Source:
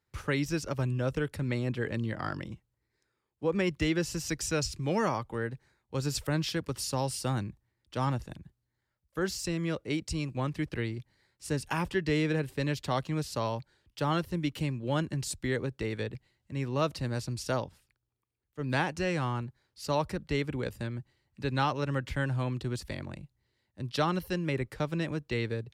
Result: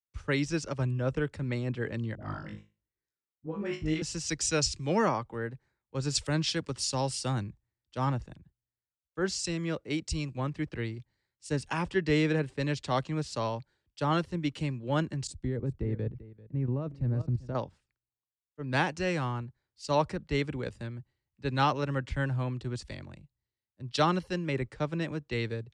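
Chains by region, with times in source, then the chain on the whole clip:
0:02.15–0:04.02: all-pass dispersion highs, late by 61 ms, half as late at 470 Hz + downward compressor 2.5 to 1, threshold −35 dBFS + flutter between parallel walls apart 3.3 metres, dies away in 0.33 s
0:15.27–0:17.55: single-tap delay 391 ms −13 dB + output level in coarse steps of 12 dB + tilt shelving filter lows +9 dB, about 640 Hz
whole clip: Butterworth low-pass 8,800 Hz 36 dB per octave; multiband upward and downward expander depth 70%

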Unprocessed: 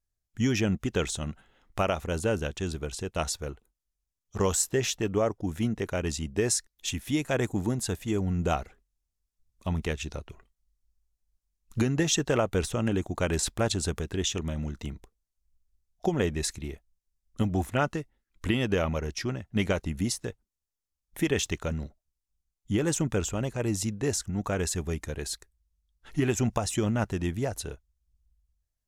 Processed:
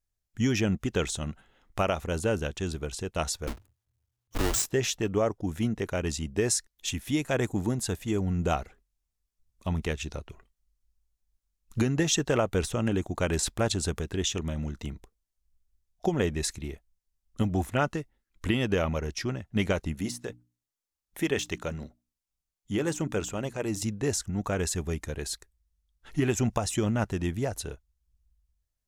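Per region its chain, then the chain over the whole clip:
0:03.47–0:04.66: each half-wave held at its own peak + downward compressor 4 to 1, threshold −24 dBFS + frequency shifter −120 Hz
0:19.94–0:23.82: mains-hum notches 60/120/180/240/300 Hz + de-essing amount 65% + low-shelf EQ 110 Hz −10 dB
whole clip: no processing

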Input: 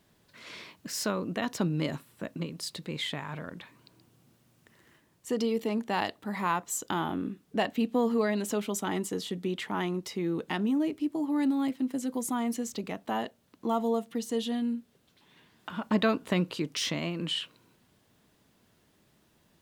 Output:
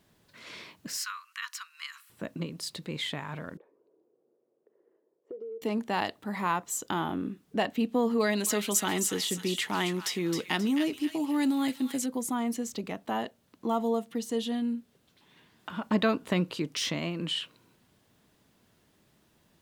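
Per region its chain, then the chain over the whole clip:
0:00.97–0:02.10: Butterworth high-pass 1,100 Hz 72 dB per octave + notch filter 3,600 Hz, Q 11 + one half of a high-frequency compander encoder only
0:03.57–0:05.62: four-pole ladder band-pass 450 Hz, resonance 60% + parametric band 490 Hz +10.5 dB 0.81 octaves + downward compressor 12 to 1, threshold −37 dBFS
0:08.20–0:12.06: high-shelf EQ 2,100 Hz +10 dB + delay with a high-pass on its return 266 ms, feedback 37%, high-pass 1,700 Hz, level −6 dB
whole clip: no processing

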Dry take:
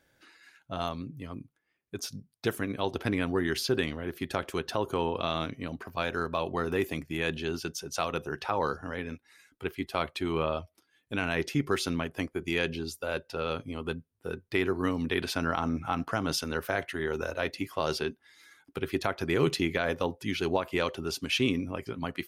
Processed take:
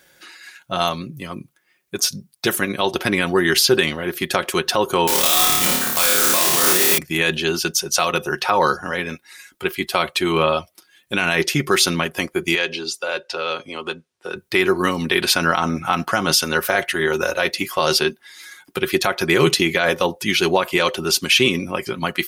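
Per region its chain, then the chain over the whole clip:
0:05.07–0:06.98: one scale factor per block 3 bits + high-shelf EQ 4,600 Hz +10 dB + flutter between parallel walls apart 4.7 metres, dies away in 0.73 s
0:12.55–0:14.36: three-way crossover with the lows and the highs turned down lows −13 dB, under 290 Hz, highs −23 dB, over 7,900 Hz + downward compressor 1.5 to 1, threshold −39 dBFS
whole clip: spectral tilt +2 dB per octave; comb filter 5.5 ms, depth 46%; boost into a limiter +15.5 dB; level −3 dB

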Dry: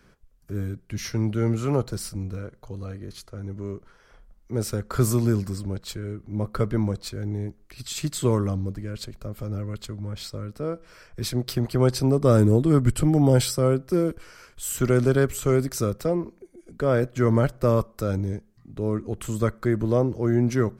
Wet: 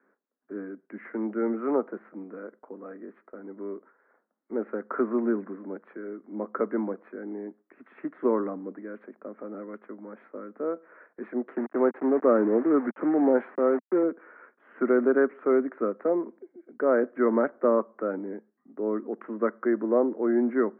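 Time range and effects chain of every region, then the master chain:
0:11.56–0:14.03: high-pass filter 75 Hz 6 dB per octave + low-shelf EQ 190 Hz −2.5 dB + centre clipping without the shift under −30.5 dBFS
whole clip: Butterworth high-pass 230 Hz 48 dB per octave; noise gate −51 dBFS, range −7 dB; Butterworth low-pass 1,900 Hz 48 dB per octave

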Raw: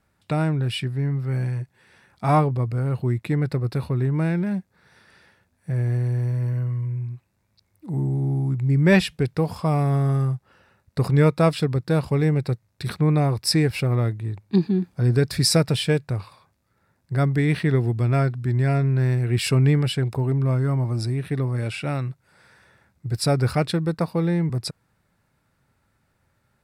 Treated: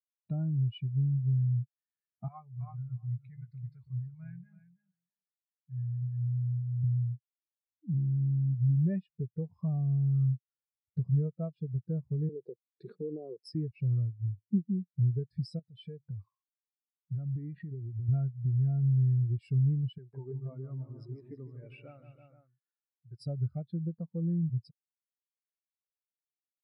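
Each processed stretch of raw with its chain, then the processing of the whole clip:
0:02.28–0:06.84: guitar amp tone stack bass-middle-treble 10-0-10 + double-tracking delay 17 ms −11 dB + repeating echo 326 ms, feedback 25%, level −6 dB
0:12.29–0:13.55: high-pass filter 180 Hz 24 dB per octave + parametric band 440 Hz +11 dB 0.95 octaves + downward compressor, threshold −20 dBFS
0:15.59–0:18.09: high-pass filter 87 Hz 6 dB per octave + downward compressor 12 to 1, threshold −27 dBFS
0:19.98–0:23.27: high-pass filter 540 Hz 6 dB per octave + multi-tap delay 154/322/466 ms −6/−7.5/−10 dB
whole clip: downward compressor 6 to 1, threshold −30 dBFS; every bin expanded away from the loudest bin 2.5 to 1

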